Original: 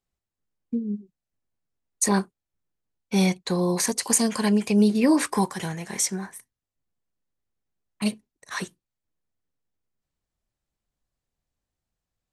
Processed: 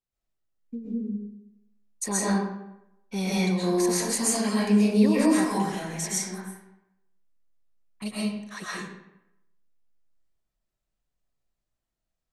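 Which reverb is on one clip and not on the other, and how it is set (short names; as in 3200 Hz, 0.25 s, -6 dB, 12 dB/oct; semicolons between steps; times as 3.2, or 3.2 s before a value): digital reverb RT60 0.85 s, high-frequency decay 0.7×, pre-delay 90 ms, DRR -7.5 dB; gain -9 dB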